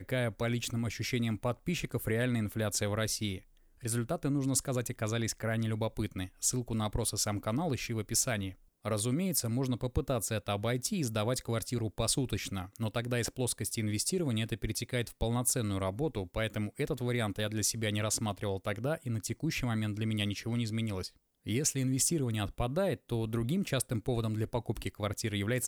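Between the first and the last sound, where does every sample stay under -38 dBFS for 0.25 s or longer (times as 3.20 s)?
3.38–3.84 s
8.50–8.85 s
21.07–21.47 s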